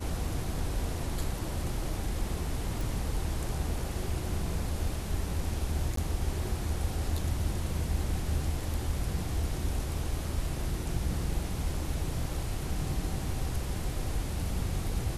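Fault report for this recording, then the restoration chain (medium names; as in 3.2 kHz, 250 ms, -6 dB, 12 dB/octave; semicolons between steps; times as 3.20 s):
2.81 s: pop
5.96–5.97 s: dropout 13 ms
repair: de-click; interpolate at 5.96 s, 13 ms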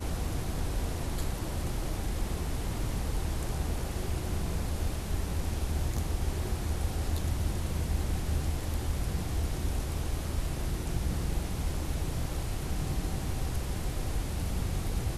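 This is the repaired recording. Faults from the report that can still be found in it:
nothing left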